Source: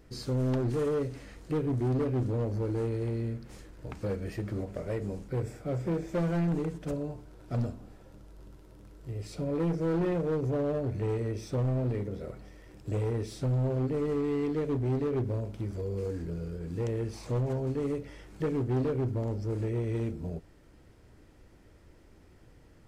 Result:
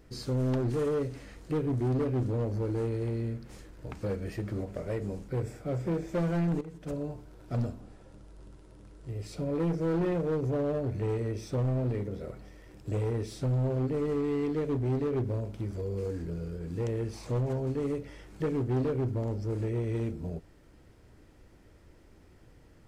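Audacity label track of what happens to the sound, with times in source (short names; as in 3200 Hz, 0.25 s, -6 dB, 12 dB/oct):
6.610000	7.020000	fade in, from -15 dB
7.800000	9.100000	careless resampling rate divided by 2×, down none, up filtered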